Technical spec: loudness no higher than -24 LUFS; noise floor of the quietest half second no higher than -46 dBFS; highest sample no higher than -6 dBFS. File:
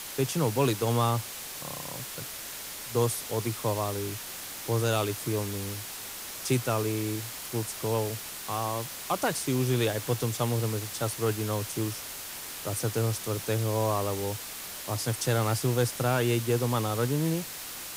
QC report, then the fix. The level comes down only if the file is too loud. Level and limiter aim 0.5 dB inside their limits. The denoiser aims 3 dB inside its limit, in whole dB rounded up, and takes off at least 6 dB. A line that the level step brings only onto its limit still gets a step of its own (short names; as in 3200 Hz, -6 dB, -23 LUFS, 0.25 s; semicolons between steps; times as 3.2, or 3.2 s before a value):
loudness -30.0 LUFS: OK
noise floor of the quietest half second -40 dBFS: fail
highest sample -13.5 dBFS: OK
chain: denoiser 9 dB, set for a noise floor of -40 dBFS